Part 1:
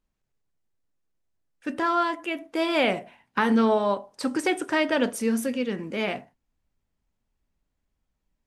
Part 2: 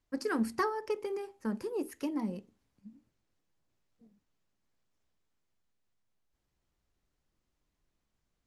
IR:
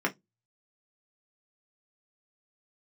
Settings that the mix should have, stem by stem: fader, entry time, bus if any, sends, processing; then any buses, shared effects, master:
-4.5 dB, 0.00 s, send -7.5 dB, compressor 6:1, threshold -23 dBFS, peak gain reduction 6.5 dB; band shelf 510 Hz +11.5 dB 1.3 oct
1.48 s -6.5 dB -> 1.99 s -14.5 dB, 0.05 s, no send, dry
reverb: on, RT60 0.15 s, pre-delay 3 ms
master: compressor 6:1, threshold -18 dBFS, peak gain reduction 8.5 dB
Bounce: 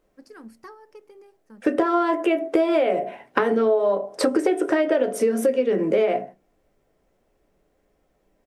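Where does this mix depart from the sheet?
stem 1 -4.5 dB -> +6.5 dB; stem 2 -6.5 dB -> -12.5 dB

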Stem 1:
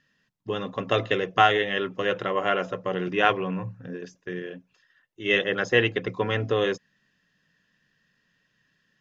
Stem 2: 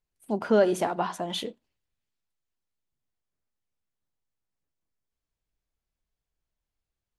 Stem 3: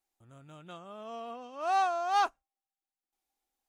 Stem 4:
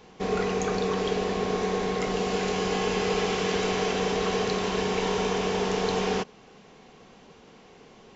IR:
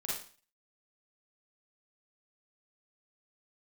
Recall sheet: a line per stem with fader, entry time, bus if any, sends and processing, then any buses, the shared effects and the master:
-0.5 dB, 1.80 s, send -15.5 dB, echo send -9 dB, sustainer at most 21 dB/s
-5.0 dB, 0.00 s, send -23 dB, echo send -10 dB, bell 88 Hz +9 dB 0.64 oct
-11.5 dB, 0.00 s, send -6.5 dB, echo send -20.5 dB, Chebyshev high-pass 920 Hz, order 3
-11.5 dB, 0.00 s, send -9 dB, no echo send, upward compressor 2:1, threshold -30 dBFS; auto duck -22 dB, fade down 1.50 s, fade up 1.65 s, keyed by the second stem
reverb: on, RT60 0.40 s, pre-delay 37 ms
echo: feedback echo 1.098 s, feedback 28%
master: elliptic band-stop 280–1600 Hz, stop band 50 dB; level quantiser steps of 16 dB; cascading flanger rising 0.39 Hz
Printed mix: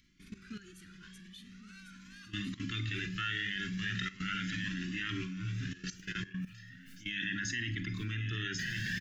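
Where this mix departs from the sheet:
stem 3 -11.5 dB -> -5.0 dB; reverb return +6.0 dB

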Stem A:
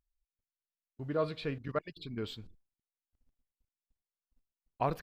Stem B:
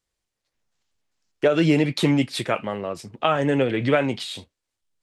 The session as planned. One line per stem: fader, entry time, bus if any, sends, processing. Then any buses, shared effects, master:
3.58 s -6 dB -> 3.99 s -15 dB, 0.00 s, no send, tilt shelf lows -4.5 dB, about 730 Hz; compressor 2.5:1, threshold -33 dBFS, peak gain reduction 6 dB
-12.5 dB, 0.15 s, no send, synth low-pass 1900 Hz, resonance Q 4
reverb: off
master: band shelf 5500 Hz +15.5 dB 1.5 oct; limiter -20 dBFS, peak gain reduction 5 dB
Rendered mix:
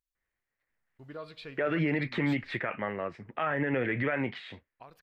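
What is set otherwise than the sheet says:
stem B -12.5 dB -> -6.5 dB; master: missing band shelf 5500 Hz +15.5 dB 1.5 oct

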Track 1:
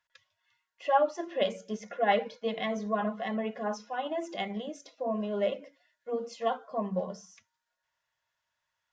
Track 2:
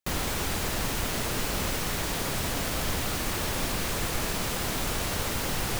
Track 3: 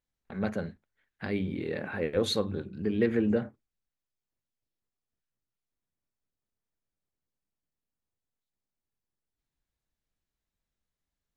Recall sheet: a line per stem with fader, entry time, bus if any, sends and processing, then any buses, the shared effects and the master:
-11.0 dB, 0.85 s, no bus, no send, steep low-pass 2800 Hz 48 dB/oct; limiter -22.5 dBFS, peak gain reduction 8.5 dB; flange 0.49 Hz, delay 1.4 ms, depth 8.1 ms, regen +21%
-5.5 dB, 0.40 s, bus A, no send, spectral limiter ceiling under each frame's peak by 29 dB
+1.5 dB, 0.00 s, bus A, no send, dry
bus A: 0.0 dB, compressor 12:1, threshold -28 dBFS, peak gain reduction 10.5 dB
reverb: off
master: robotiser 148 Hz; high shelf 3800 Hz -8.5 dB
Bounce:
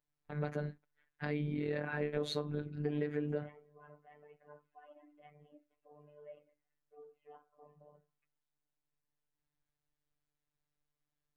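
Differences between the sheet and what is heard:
stem 1 -11.0 dB -> -18.0 dB; stem 2: muted

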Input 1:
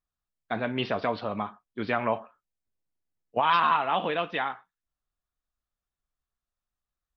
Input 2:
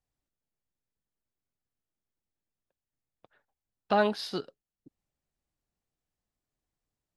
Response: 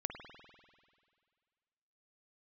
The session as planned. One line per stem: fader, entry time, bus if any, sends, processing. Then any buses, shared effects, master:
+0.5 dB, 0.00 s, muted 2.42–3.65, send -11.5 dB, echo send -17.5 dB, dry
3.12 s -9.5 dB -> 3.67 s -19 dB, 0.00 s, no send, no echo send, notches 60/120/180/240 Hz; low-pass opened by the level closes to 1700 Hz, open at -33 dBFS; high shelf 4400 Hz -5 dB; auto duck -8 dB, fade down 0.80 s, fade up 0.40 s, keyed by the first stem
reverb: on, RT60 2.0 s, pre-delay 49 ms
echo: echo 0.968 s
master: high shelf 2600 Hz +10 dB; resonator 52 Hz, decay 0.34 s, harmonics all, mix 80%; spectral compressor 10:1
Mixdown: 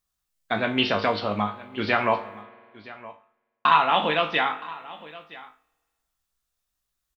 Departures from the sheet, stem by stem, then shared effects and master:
stem 1 +0.5 dB -> +8.0 dB; master: missing spectral compressor 10:1

